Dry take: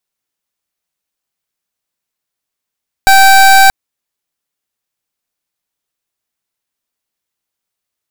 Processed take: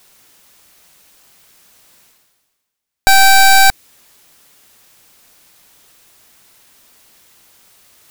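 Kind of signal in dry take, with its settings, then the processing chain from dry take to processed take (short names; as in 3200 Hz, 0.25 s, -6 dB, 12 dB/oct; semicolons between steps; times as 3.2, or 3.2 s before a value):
pulse 777 Hz, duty 26% -4.5 dBFS 0.63 s
dynamic EQ 1000 Hz, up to -6 dB, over -22 dBFS, Q 1; reverse; upward compressor, threshold -25 dBFS; reverse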